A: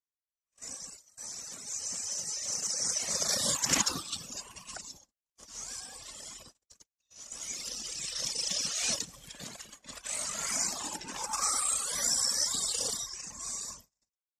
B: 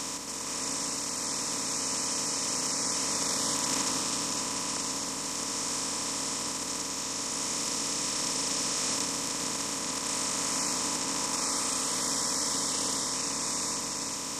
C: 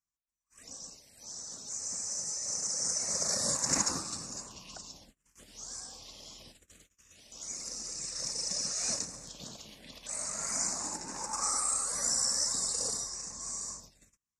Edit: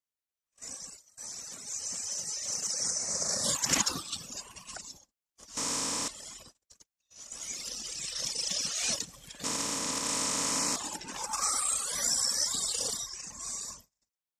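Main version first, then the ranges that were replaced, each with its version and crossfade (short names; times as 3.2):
A
2.9–3.44 from C
5.57–6.08 from B
9.44–10.76 from B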